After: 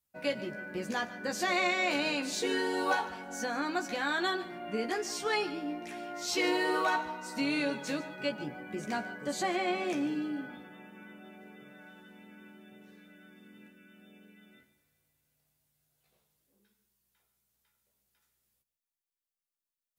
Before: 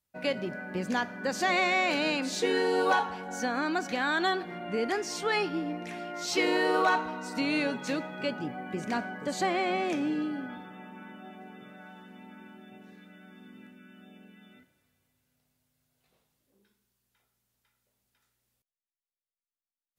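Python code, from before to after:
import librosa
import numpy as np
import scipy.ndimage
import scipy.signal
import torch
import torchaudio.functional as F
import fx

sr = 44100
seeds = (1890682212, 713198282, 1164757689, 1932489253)

y = fx.high_shelf(x, sr, hz=7300.0, db=7.0)
y = fx.doubler(y, sr, ms=14.0, db=-5)
y = y + 10.0 ** (-17.0 / 20.0) * np.pad(y, (int(146 * sr / 1000.0), 0))[:len(y)]
y = F.gain(torch.from_numpy(y), -4.5).numpy()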